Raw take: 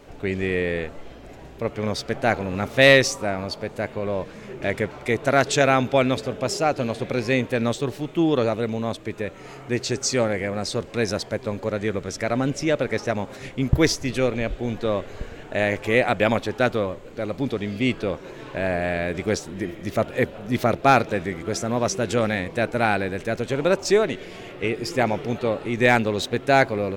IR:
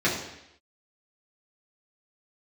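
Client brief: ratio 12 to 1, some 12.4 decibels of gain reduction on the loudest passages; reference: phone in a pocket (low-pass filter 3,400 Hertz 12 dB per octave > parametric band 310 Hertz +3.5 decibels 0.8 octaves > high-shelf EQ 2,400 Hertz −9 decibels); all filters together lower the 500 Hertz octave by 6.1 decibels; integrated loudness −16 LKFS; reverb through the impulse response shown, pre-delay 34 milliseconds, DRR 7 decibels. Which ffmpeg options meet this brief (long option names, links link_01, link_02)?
-filter_complex "[0:a]equalizer=frequency=500:width_type=o:gain=-8.5,acompressor=threshold=-26dB:ratio=12,asplit=2[link_01][link_02];[1:a]atrim=start_sample=2205,adelay=34[link_03];[link_02][link_03]afir=irnorm=-1:irlink=0,volume=-21.5dB[link_04];[link_01][link_04]amix=inputs=2:normalize=0,lowpass=3400,equalizer=frequency=310:width_type=o:width=0.8:gain=3.5,highshelf=frequency=2400:gain=-9,volume=15dB"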